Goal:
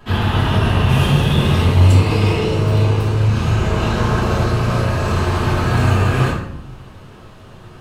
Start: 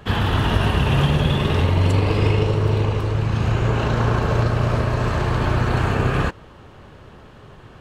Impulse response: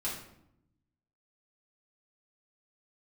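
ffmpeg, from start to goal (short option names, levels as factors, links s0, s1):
-filter_complex "[0:a]asetnsamples=n=441:p=0,asendcmd='0.89 highshelf g 12',highshelf=f=5200:g=2.5[s0];[1:a]atrim=start_sample=2205[s1];[s0][s1]afir=irnorm=-1:irlink=0,volume=0.841"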